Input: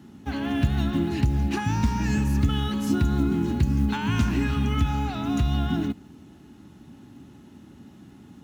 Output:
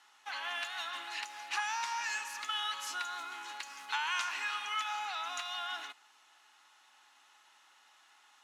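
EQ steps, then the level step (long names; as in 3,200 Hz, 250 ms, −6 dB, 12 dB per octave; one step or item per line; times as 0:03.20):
high-pass filter 940 Hz 24 dB per octave
low-pass filter 9,400 Hz 12 dB per octave
notch filter 1,600 Hz, Q 29
0.0 dB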